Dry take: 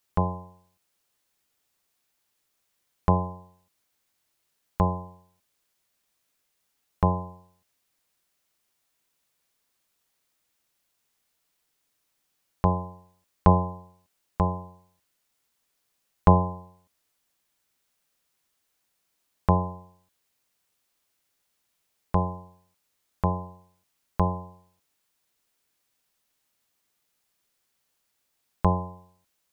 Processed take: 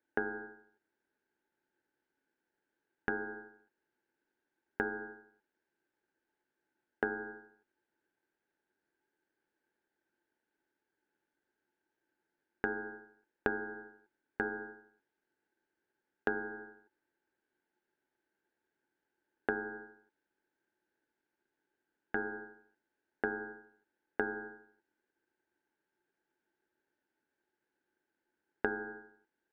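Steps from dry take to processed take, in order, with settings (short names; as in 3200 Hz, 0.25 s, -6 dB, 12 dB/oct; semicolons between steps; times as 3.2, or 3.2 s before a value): double band-pass 490 Hz, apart 1.9 oct; compressor 12:1, threshold -40 dBFS, peak gain reduction 18.5 dB; ring modulator 610 Hz; gain +12 dB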